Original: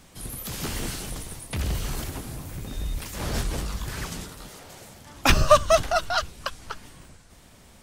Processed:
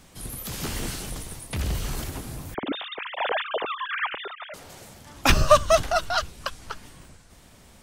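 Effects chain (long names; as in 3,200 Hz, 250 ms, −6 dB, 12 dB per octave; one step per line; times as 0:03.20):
0:02.54–0:04.54: three sine waves on the formant tracks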